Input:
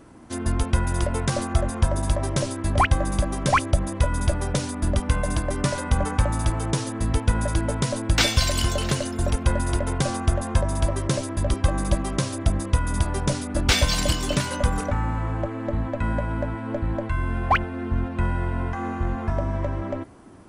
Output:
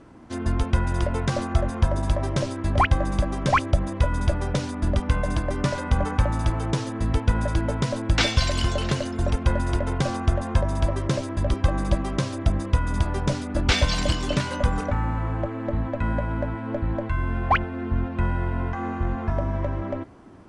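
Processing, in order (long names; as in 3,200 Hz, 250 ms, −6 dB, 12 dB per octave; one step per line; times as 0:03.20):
high-frequency loss of the air 81 metres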